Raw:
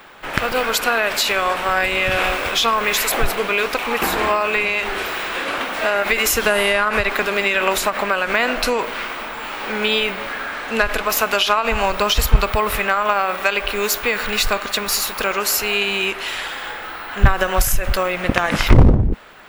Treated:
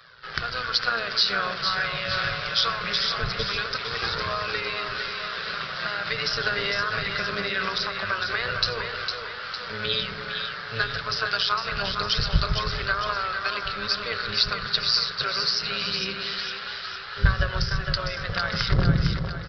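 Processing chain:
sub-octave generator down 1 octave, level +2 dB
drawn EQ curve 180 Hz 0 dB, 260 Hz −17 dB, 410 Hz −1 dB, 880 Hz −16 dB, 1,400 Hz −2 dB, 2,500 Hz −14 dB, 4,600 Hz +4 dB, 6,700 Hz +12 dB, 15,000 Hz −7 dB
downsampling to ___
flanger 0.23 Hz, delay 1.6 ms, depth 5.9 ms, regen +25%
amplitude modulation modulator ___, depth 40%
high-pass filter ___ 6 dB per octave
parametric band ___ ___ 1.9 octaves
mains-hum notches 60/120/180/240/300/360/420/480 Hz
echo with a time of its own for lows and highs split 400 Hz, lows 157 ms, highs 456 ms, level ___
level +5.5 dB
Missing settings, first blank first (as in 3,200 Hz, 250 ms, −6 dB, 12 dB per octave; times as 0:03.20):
11,025 Hz, 120 Hz, 160 Hz, 330 Hz, −11 dB, −6 dB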